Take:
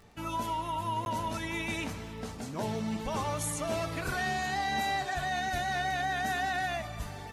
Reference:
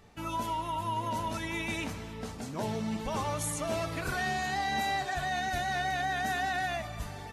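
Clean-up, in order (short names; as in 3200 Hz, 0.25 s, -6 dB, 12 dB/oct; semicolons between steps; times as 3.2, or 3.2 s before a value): de-click; interpolate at 1.05, 11 ms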